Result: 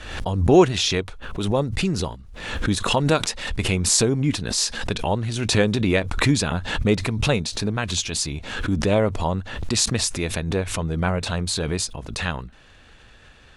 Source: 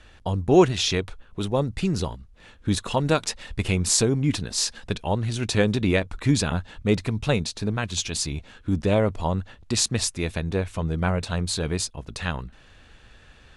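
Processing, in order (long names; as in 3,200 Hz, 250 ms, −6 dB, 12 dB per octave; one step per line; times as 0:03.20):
low-shelf EQ 170 Hz −3 dB
background raised ahead of every attack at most 57 dB per second
level +2 dB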